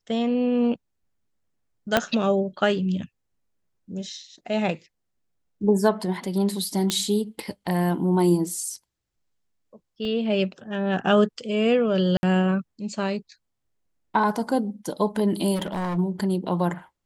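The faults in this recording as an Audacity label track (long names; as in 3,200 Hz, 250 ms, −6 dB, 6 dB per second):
1.970000	1.970000	click −4 dBFS
6.900000	6.900000	click −9 dBFS
10.050000	10.050000	drop-out 2.1 ms
12.170000	12.230000	drop-out 61 ms
15.550000	15.980000	clipping −24 dBFS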